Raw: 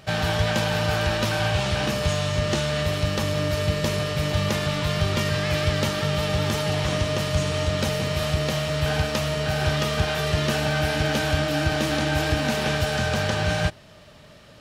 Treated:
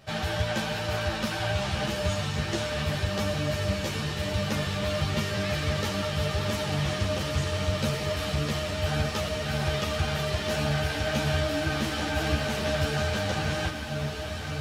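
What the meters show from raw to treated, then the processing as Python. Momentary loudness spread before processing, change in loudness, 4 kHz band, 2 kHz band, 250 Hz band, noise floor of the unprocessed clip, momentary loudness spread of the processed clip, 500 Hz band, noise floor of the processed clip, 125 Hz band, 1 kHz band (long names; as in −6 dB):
2 LU, −4.5 dB, −4.5 dB, −4.5 dB, −4.0 dB, −48 dBFS, 2 LU, −5.0 dB, −33 dBFS, −4.5 dB, −4.5 dB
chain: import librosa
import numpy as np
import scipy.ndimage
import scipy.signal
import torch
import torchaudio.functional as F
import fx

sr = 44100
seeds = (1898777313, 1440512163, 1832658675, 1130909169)

p1 = x + fx.echo_diffused(x, sr, ms=1499, feedback_pct=63, wet_db=-7.0, dry=0)
p2 = fx.ensemble(p1, sr)
y = F.gain(torch.from_numpy(p2), -2.5).numpy()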